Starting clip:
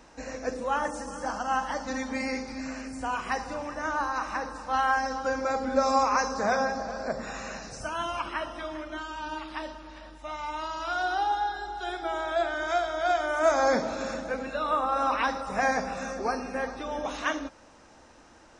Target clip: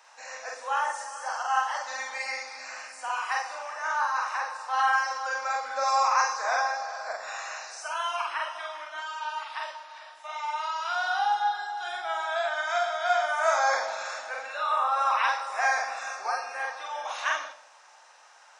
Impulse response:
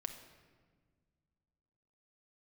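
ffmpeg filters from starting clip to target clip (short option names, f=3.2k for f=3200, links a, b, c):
-filter_complex "[0:a]highpass=f=740:w=0.5412,highpass=f=740:w=1.3066,asplit=2[a][b];[1:a]atrim=start_sample=2205,afade=t=out:st=0.22:d=0.01,atrim=end_sample=10143,adelay=46[c];[b][c]afir=irnorm=-1:irlink=0,volume=1.5dB[d];[a][d]amix=inputs=2:normalize=0"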